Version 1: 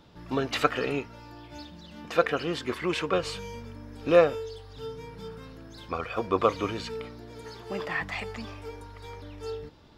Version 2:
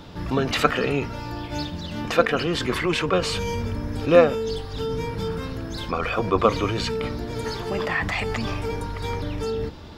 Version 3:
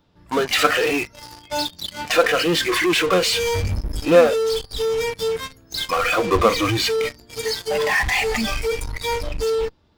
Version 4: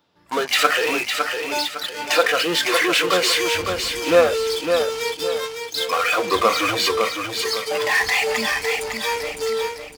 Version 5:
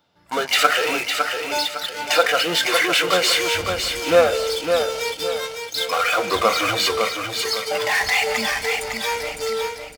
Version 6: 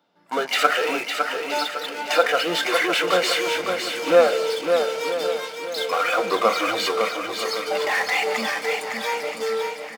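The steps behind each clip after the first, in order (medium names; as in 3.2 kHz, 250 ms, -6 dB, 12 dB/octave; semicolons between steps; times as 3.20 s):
octave divider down 1 oct, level -3 dB; in parallel at -1 dB: compressor with a negative ratio -39 dBFS, ratio -1; on the sum: trim +4 dB
spectral noise reduction 20 dB; in parallel at -9 dB: fuzz box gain 38 dB, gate -41 dBFS
high-pass 520 Hz 6 dB/octave; on a send: feedback delay 557 ms, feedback 36%, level -5.5 dB; on the sum: trim +1 dB
comb 1.4 ms, depth 31%; on a send at -16 dB: reverberation RT60 0.60 s, pre-delay 115 ms
high-pass 180 Hz 24 dB/octave; treble shelf 2.4 kHz -7.5 dB; on a send: feedback delay 971 ms, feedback 46%, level -12.5 dB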